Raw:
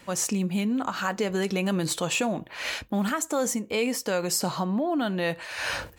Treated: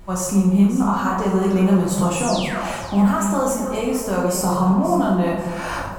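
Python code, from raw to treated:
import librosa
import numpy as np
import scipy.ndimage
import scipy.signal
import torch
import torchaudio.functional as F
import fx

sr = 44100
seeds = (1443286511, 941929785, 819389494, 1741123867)

p1 = fx.graphic_eq(x, sr, hz=(125, 1000, 2000, 4000), db=(7, 8, -7, -8))
p2 = fx.backlash(p1, sr, play_db=-40.5)
p3 = p1 + (p2 * librosa.db_to_amplitude(-3.0))
p4 = fx.spec_paint(p3, sr, seeds[0], shape='fall', start_s=2.16, length_s=0.57, low_hz=500.0, high_hz=11000.0, level_db=-29.0)
p5 = fx.dmg_noise_colour(p4, sr, seeds[1], colour='brown', level_db=-40.0)
p6 = p5 + fx.echo_alternate(p5, sr, ms=267, hz=1100.0, feedback_pct=55, wet_db=-8.0, dry=0)
p7 = fx.rev_plate(p6, sr, seeds[2], rt60_s=0.82, hf_ratio=0.7, predelay_ms=0, drr_db=-4.0)
y = p7 * librosa.db_to_amplitude(-5.5)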